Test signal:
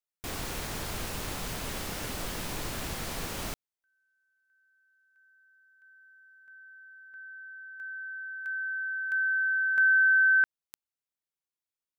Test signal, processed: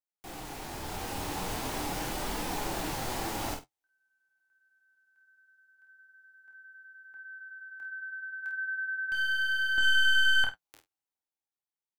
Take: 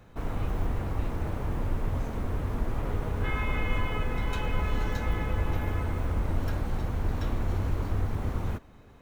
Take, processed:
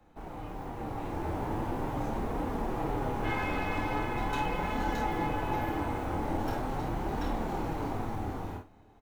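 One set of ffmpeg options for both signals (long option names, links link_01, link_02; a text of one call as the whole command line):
ffmpeg -i in.wav -filter_complex "[0:a]acrossover=split=130|420|1300[link_01][link_02][link_03][link_04];[link_01]acompressor=threshold=-38dB:ratio=6:attack=38:release=36[link_05];[link_05][link_02][link_03][link_04]amix=inputs=4:normalize=0,aeval=exprs='clip(val(0),-1,0.0316)':channel_layout=same,equalizer=frequency=810:width_type=o:width=0.43:gain=11,dynaudnorm=framelen=150:gausssize=13:maxgain=8.5dB,equalizer=frequency=310:width_type=o:width=0.47:gain=7.5,aecho=1:1:27|50:0.531|0.422,flanger=delay=3.7:depth=7.8:regen=-42:speed=0.41:shape=triangular,asplit=2[link_06][link_07];[link_07]adelay=48,volume=-12.5dB[link_08];[link_06][link_08]amix=inputs=2:normalize=0,volume=-6.5dB" out.wav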